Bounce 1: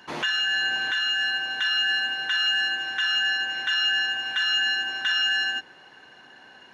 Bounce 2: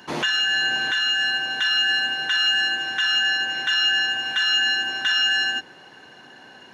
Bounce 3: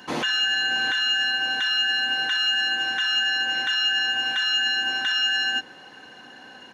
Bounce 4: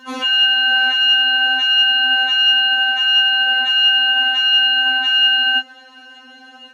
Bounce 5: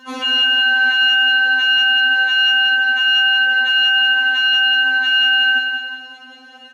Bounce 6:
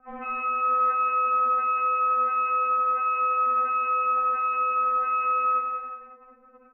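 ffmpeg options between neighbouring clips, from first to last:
ffmpeg -i in.wav -af "highpass=71,equalizer=frequency=1700:width=0.39:gain=-5.5,volume=8dB" out.wav
ffmpeg -i in.wav -af "aecho=1:1:3.9:0.3,alimiter=limit=-15.5dB:level=0:latency=1:release=65" out.wav
ffmpeg -i in.wav -af "afftfilt=real='re*3.46*eq(mod(b,12),0)':imag='im*3.46*eq(mod(b,12),0)':win_size=2048:overlap=0.75,volume=1.5dB" out.wav
ffmpeg -i in.wav -af "aecho=1:1:183|366|549|732|915|1098:0.531|0.25|0.117|0.0551|0.0259|0.0122,volume=-1dB" out.wav
ffmpeg -i in.wav -af "adynamicsmooth=sensitivity=5.5:basefreq=720,highpass=frequency=370:width_type=q:width=0.5412,highpass=frequency=370:width_type=q:width=1.307,lowpass=frequency=2200:width_type=q:width=0.5176,lowpass=frequency=2200:width_type=q:width=0.7071,lowpass=frequency=2200:width_type=q:width=1.932,afreqshift=-270,volume=-7.5dB" out.wav

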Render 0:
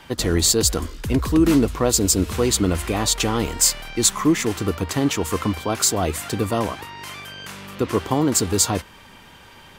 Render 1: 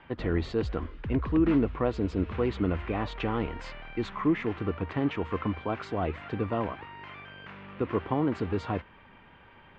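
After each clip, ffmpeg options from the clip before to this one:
ffmpeg -i in.wav -af "lowpass=frequency=2600:width=0.5412,lowpass=frequency=2600:width=1.3066,volume=-7.5dB" out.wav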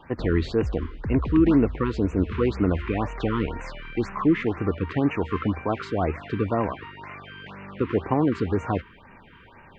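ffmpeg -i in.wav -af "afftfilt=real='re*(1-between(b*sr/1024,610*pow(4200/610,0.5+0.5*sin(2*PI*2*pts/sr))/1.41,610*pow(4200/610,0.5+0.5*sin(2*PI*2*pts/sr))*1.41))':imag='im*(1-between(b*sr/1024,610*pow(4200/610,0.5+0.5*sin(2*PI*2*pts/sr))/1.41,610*pow(4200/610,0.5+0.5*sin(2*PI*2*pts/sr))*1.41))':win_size=1024:overlap=0.75,volume=5.5dB" out.wav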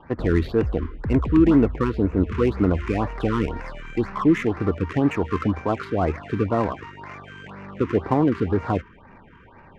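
ffmpeg -i in.wav -af "adynamicsmooth=sensitivity=6:basefreq=1800,volume=2.5dB" out.wav

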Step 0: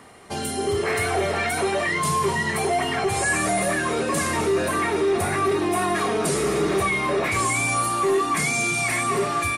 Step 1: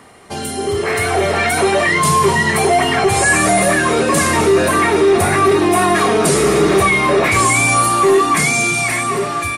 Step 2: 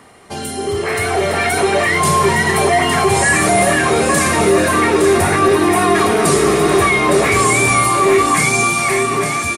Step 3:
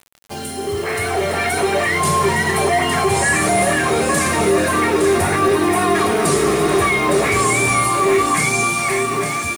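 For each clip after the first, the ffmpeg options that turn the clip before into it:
ffmpeg -i in.wav -af "dynaudnorm=framelen=180:gausssize=13:maxgain=5.5dB,volume=4dB" out.wav
ffmpeg -i in.wav -af "aecho=1:1:437|862:0.224|0.473,volume=-1dB" out.wav
ffmpeg -i in.wav -af "acrusher=bits=5:mix=0:aa=0.000001,volume=-3dB" out.wav

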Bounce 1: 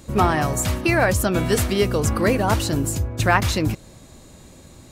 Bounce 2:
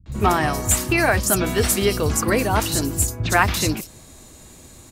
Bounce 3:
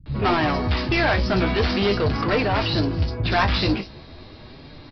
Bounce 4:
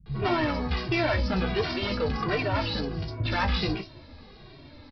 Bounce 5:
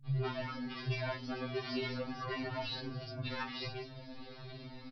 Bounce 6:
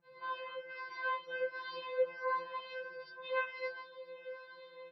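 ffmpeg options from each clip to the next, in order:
ffmpeg -i in.wav -filter_complex "[0:a]highshelf=frequency=3300:gain=8,bandreject=frequency=550:width=12,acrossover=split=160|4200[link_01][link_02][link_03];[link_02]adelay=60[link_04];[link_03]adelay=120[link_05];[link_01][link_04][link_05]amix=inputs=3:normalize=0" out.wav
ffmpeg -i in.wav -filter_complex "[0:a]aresample=11025,asoftclip=type=tanh:threshold=-21dB,aresample=44100,flanger=delay=6.7:depth=9.8:regen=45:speed=0.42:shape=sinusoidal,asplit=2[link_01][link_02];[link_02]adelay=20,volume=-13dB[link_03];[link_01][link_03]amix=inputs=2:normalize=0,volume=8.5dB" out.wav
ffmpeg -i in.wav -filter_complex "[0:a]asplit=2[link_01][link_02];[link_02]adelay=2,afreqshift=-1.4[link_03];[link_01][link_03]amix=inputs=2:normalize=1,volume=-3dB" out.wav
ffmpeg -i in.wav -af "acompressor=threshold=-34dB:ratio=6,aecho=1:1:983:0.0891,afftfilt=real='re*2.45*eq(mod(b,6),0)':imag='im*2.45*eq(mod(b,6),0)':win_size=2048:overlap=0.75,volume=1dB" out.wav
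ffmpeg -i in.wav -af "highpass=360,lowpass=2100,aemphasis=mode=reproduction:type=50fm,afftfilt=real='re*2.83*eq(mod(b,8),0)':imag='im*2.83*eq(mod(b,8),0)':win_size=2048:overlap=0.75,volume=7dB" out.wav

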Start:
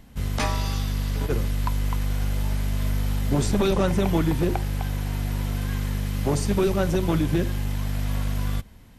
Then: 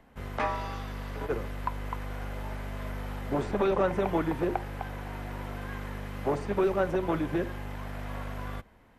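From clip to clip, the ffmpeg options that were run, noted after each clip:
ffmpeg -i in.wav -filter_complex "[0:a]acrossover=split=340 2200:gain=0.224 1 0.158[link_01][link_02][link_03];[link_01][link_02][link_03]amix=inputs=3:normalize=0,acrossover=split=4100[link_04][link_05];[link_05]alimiter=level_in=24dB:limit=-24dB:level=0:latency=1:release=192,volume=-24dB[link_06];[link_04][link_06]amix=inputs=2:normalize=0" out.wav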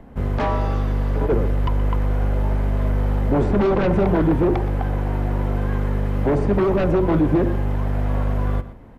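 ffmpeg -i in.wav -filter_complex "[0:a]aeval=exprs='0.211*sin(PI/2*3.55*val(0)/0.211)':channel_layout=same,tiltshelf=frequency=970:gain=8,asplit=2[link_01][link_02];[link_02]adelay=122.4,volume=-14dB,highshelf=frequency=4000:gain=-2.76[link_03];[link_01][link_03]amix=inputs=2:normalize=0,volume=-5.5dB" out.wav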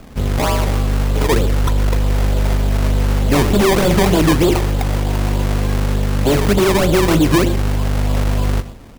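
ffmpeg -i in.wav -af "acrusher=samples=22:mix=1:aa=0.000001:lfo=1:lforange=22:lforate=3.3,volume=4.5dB" out.wav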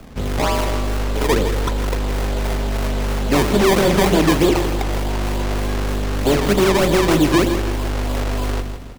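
ffmpeg -i in.wav -filter_complex "[0:a]acrossover=split=190|7900[link_01][link_02][link_03];[link_01]asoftclip=type=tanh:threshold=-19.5dB[link_04];[link_03]tremolo=f=3.2:d=0.55[link_05];[link_04][link_02][link_05]amix=inputs=3:normalize=0,aecho=1:1:163|326|489|652:0.316|0.133|0.0558|0.0234,volume=-1dB" out.wav

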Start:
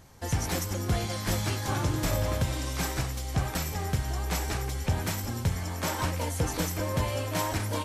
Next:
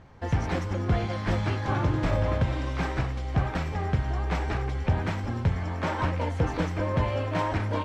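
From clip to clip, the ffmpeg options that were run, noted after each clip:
ffmpeg -i in.wav -af "lowpass=2400,volume=3dB" out.wav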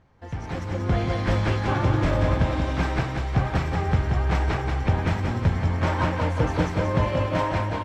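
ffmpeg -i in.wav -af "dynaudnorm=framelen=270:gausssize=5:maxgain=12.5dB,aecho=1:1:181|362|543|724|905|1086|1267:0.531|0.287|0.155|0.0836|0.0451|0.0244|0.0132,volume=-8.5dB" out.wav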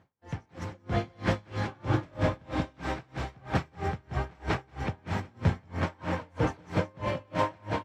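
ffmpeg -i in.wav -af "highpass=100,aeval=exprs='val(0)*pow(10,-32*(0.5-0.5*cos(2*PI*3.1*n/s))/20)':channel_layout=same" out.wav

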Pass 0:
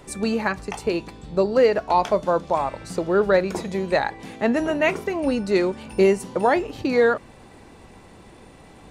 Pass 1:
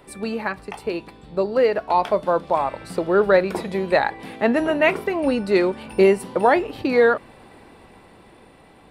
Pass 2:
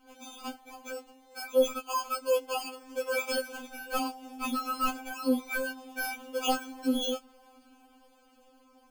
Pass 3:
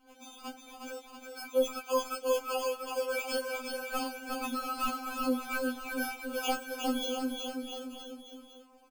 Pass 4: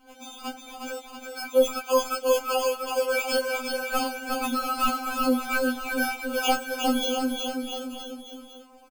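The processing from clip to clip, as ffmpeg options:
ffmpeg -i in.wav -af "equalizer=frequency=6500:width=2.2:gain=-13.5,dynaudnorm=framelen=630:gausssize=7:maxgain=6.5dB,lowshelf=frequency=190:gain=-7,volume=-1.5dB" out.wav
ffmpeg -i in.wav -af "flanger=delay=2.7:depth=9.1:regen=-48:speed=0.51:shape=sinusoidal,acrusher=samples=23:mix=1:aa=0.000001,afftfilt=real='re*3.46*eq(mod(b,12),0)':imag='im*3.46*eq(mod(b,12),0)':win_size=2048:overlap=0.75,volume=-5.5dB" out.wav
ffmpeg -i in.wav -af "aecho=1:1:360|684|975.6|1238|1474:0.631|0.398|0.251|0.158|0.1,volume=-3.5dB" out.wav
ffmpeg -i in.wav -filter_complex "[0:a]asplit=2[link_01][link_02];[link_02]adelay=13,volume=-13dB[link_03];[link_01][link_03]amix=inputs=2:normalize=0,volume=7.5dB" out.wav

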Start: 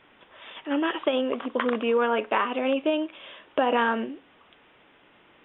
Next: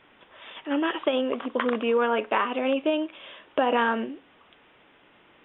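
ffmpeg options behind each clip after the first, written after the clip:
ffmpeg -i in.wav -af anull out.wav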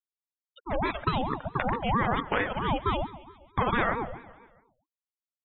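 ffmpeg -i in.wav -af "afftfilt=real='re*gte(hypot(re,im),0.0447)':imag='im*gte(hypot(re,im),0.0447)':win_size=1024:overlap=0.75,aecho=1:1:137|274|411|548|685:0.141|0.0791|0.0443|0.0248|0.0139,aeval=exprs='val(0)*sin(2*PI*480*n/s+480*0.5/4.5*sin(2*PI*4.5*n/s))':channel_layout=same" out.wav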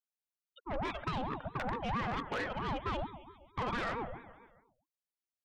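ffmpeg -i in.wav -af "asoftclip=type=tanh:threshold=-25dB,volume=-4.5dB" out.wav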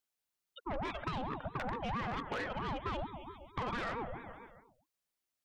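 ffmpeg -i in.wav -af "acompressor=threshold=-45dB:ratio=2.5,volume=6dB" out.wav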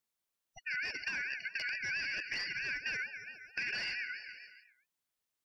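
ffmpeg -i in.wav -af "afftfilt=real='real(if(lt(b,272),68*(eq(floor(b/68),0)*2+eq(floor(b/68),1)*0+eq(floor(b/68),2)*3+eq(floor(b/68),3)*1)+mod(b,68),b),0)':imag='imag(if(lt(b,272),68*(eq(floor(b/68),0)*2+eq(floor(b/68),1)*0+eq(floor(b/68),2)*3+eq(floor(b/68),3)*1)+mod(b,68),b),0)':win_size=2048:overlap=0.75" out.wav

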